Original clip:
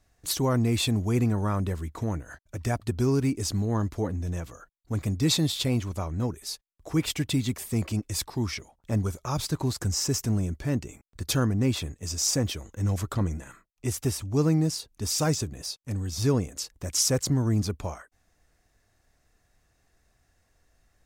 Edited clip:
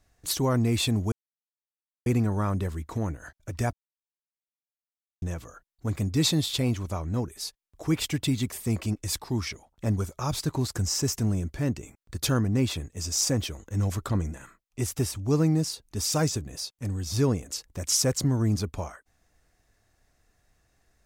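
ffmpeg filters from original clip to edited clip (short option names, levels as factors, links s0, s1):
-filter_complex "[0:a]asplit=4[s0][s1][s2][s3];[s0]atrim=end=1.12,asetpts=PTS-STARTPTS,afade=t=out:st=1.116:d=0.004:c=hsin,apad=pad_dur=0.94[s4];[s1]atrim=start=1.12:end=2.79,asetpts=PTS-STARTPTS,afade=t=in:d=0.004:c=hsin,afade=t=out:st=1.666:d=0.004:c=hsin[s5];[s2]atrim=start=2.79:end=4.28,asetpts=PTS-STARTPTS,volume=0[s6];[s3]atrim=start=4.28,asetpts=PTS-STARTPTS,afade=t=in:d=0.004:c=hsin[s7];[s4][s5][s6][s7]concat=n=4:v=0:a=1"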